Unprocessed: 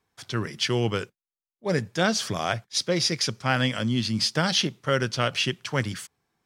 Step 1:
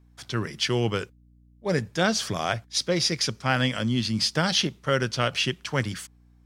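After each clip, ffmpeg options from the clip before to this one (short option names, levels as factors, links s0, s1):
-af "aeval=exprs='val(0)+0.00178*(sin(2*PI*60*n/s)+sin(2*PI*2*60*n/s)/2+sin(2*PI*3*60*n/s)/3+sin(2*PI*4*60*n/s)/4+sin(2*PI*5*60*n/s)/5)':c=same"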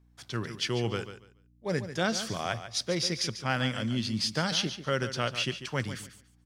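-af "aecho=1:1:143|286|429:0.266|0.0559|0.0117,volume=0.531"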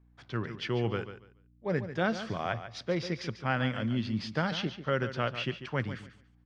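-af "lowpass=2400"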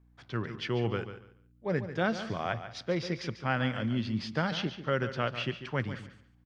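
-filter_complex "[0:a]asplit=2[s0][s1];[s1]adelay=192.4,volume=0.1,highshelf=f=4000:g=-4.33[s2];[s0][s2]amix=inputs=2:normalize=0"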